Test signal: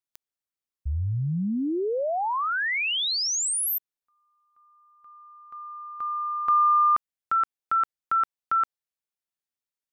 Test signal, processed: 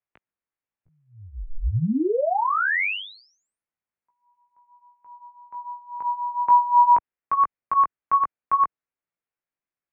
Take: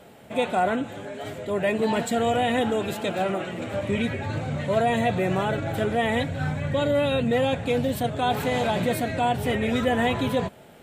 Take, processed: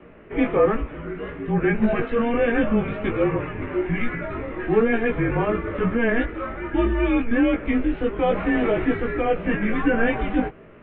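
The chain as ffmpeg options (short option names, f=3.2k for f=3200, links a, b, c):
-af "highpass=f=240:t=q:w=0.5412,highpass=f=240:t=q:w=1.307,lowpass=f=2.7k:t=q:w=0.5176,lowpass=f=2.7k:t=q:w=0.7071,lowpass=f=2.7k:t=q:w=1.932,afreqshift=-230,flanger=delay=17:depth=2.3:speed=1.2,volume=7dB"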